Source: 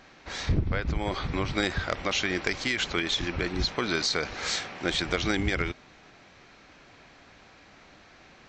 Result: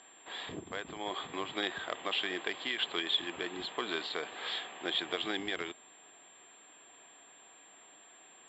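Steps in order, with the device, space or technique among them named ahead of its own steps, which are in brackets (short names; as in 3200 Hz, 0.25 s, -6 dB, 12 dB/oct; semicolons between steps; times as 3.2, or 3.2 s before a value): toy sound module (decimation joined by straight lines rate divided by 4×; pulse-width modulation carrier 7400 Hz; speaker cabinet 510–4100 Hz, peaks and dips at 550 Hz -8 dB, 850 Hz -4 dB, 1400 Hz -10 dB, 2200 Hz -9 dB, 3400 Hz +9 dB)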